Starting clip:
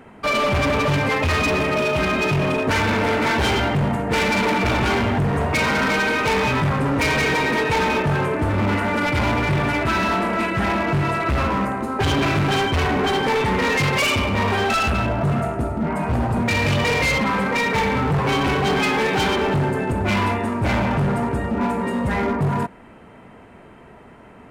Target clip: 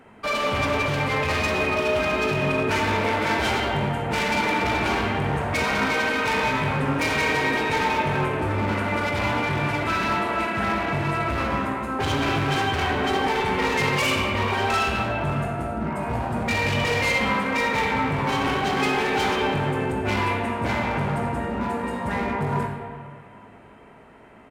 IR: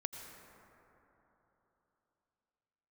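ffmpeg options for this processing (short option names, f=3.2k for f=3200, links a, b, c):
-filter_complex "[0:a]lowshelf=f=270:g=-4.5,asplit=2[a][b];[b]adelay=19,volume=-11dB[c];[a][c]amix=inputs=2:normalize=0[d];[1:a]atrim=start_sample=2205,asetrate=79380,aresample=44100[e];[d][e]afir=irnorm=-1:irlink=0,volume=3dB"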